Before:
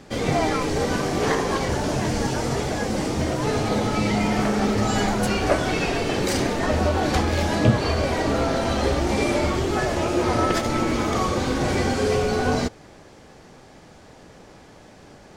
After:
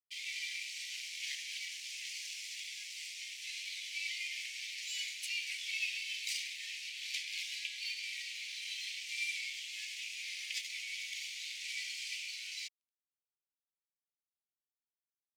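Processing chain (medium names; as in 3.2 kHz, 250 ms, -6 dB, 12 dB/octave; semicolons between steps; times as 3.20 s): crossover distortion -35 dBFS; steep high-pass 2.2 kHz 72 dB/octave; tilt EQ -3.5 dB/octave; trim +1 dB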